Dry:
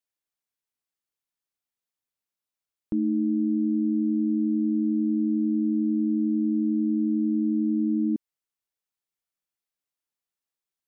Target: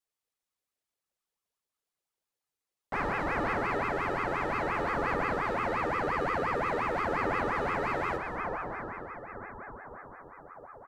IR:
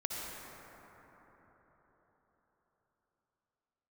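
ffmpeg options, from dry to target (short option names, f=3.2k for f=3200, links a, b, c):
-filter_complex "[0:a]bandreject=f=360:w=12,aeval=exprs='0.0335*(abs(mod(val(0)/0.0335+3,4)-2)-1)':c=same,asplit=2[a][b];[1:a]atrim=start_sample=2205,asetrate=24255,aresample=44100[c];[b][c]afir=irnorm=-1:irlink=0,volume=-5.5dB[d];[a][d]amix=inputs=2:normalize=0,flanger=delay=16.5:depth=2:speed=0.24,lowshelf=f=140:g=10,aecho=1:1:2.4:0.68,aeval=exprs='val(0)*sin(2*PI*850*n/s+850*0.5/5.7*sin(2*PI*5.7*n/s))':c=same"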